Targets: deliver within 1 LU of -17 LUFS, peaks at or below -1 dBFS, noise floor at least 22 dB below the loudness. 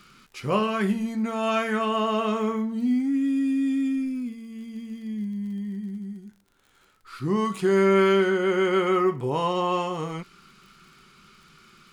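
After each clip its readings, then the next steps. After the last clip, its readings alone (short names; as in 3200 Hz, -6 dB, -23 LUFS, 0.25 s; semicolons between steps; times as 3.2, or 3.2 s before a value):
ticks 43/s; loudness -25.0 LUFS; peak -10.5 dBFS; loudness target -17.0 LUFS
-> de-click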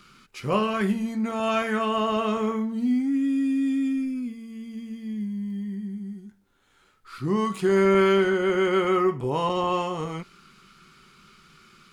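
ticks 0.75/s; loudness -25.0 LUFS; peak -10.5 dBFS; loudness target -17.0 LUFS
-> gain +8 dB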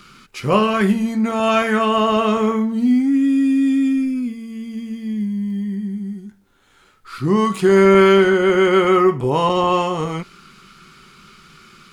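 loudness -17.0 LUFS; peak -2.5 dBFS; noise floor -55 dBFS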